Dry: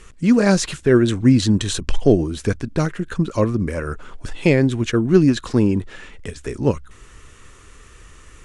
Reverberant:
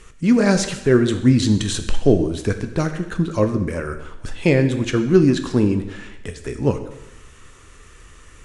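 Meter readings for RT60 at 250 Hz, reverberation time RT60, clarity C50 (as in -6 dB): 0.95 s, 0.95 s, 10.5 dB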